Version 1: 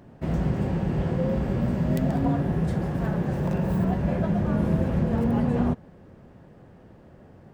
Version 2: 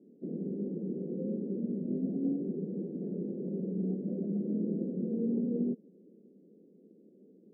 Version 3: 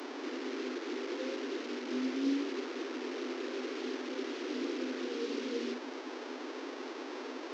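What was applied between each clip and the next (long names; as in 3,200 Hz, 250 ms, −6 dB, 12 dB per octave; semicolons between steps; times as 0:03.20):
elliptic band-pass filter 190–450 Hz, stop band 50 dB; spectral tilt +2.5 dB per octave
linear delta modulator 32 kbit/s, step −35 dBFS; Chebyshev high-pass filter 250 Hz, order 10; level +1 dB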